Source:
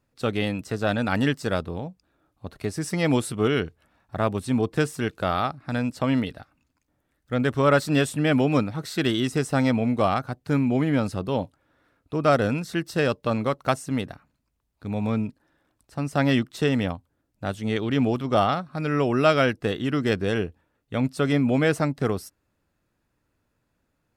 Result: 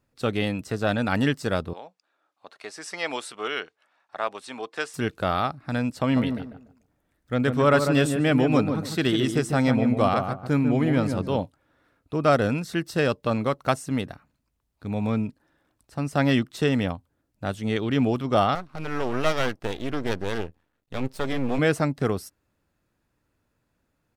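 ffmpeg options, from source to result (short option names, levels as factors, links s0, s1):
-filter_complex "[0:a]asettb=1/sr,asplit=3[s0][s1][s2];[s0]atrim=end=1.734[s3];[s1]atrim=start=1.73:end=4.94,asetpts=PTS-STARTPTS,afade=t=in:d=0.004:c=qsin,afade=t=out:st=3.206:d=0.004:c=qsin,highpass=710,lowpass=6900[s4];[s2]atrim=start=4.936[s5];[s3][s4]acrossfade=d=0.004:c1=hsin:c2=qsin[s6];[s6][s5]acrossfade=d=0.004:c1=qsin:c2=hsin,asplit=3[s7][s8][s9];[s7]afade=t=out:st=6.1:d=0.02[s10];[s8]asplit=2[s11][s12];[s12]adelay=146,lowpass=f=1100:p=1,volume=0.531,asplit=2[s13][s14];[s14]adelay=146,lowpass=f=1100:p=1,volume=0.28,asplit=2[s15][s16];[s16]adelay=146,lowpass=f=1100:p=1,volume=0.28,asplit=2[s17][s18];[s18]adelay=146,lowpass=f=1100:p=1,volume=0.28[s19];[s11][s13][s15][s17][s19]amix=inputs=5:normalize=0,afade=t=in:st=6.1:d=0.02,afade=t=out:st=11.39:d=0.02[s20];[s9]afade=t=in:st=11.39:d=0.02[s21];[s10][s20][s21]amix=inputs=3:normalize=0,asettb=1/sr,asplit=3[s22][s23][s24];[s22]atrim=end=18.554[s25];[s23]atrim=start=18.55:end=21.59,asetpts=PTS-STARTPTS,afade=t=in:d=0.004:c=qsin,afade=t=out:st=3.036:d=0.004:c=qsin,aeval=exprs='max(val(0),0)':c=same[s26];[s24]atrim=start=21.586[s27];[s25][s26]acrossfade=d=0.004:c1=hsin:c2=qsin[s28];[s28][s27]acrossfade=d=0.004:c1=qsin:c2=hsin"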